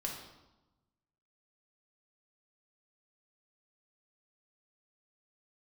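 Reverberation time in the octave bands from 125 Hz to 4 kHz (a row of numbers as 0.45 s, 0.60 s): 1.5 s, 1.3 s, 1.0 s, 1.0 s, 0.75 s, 0.80 s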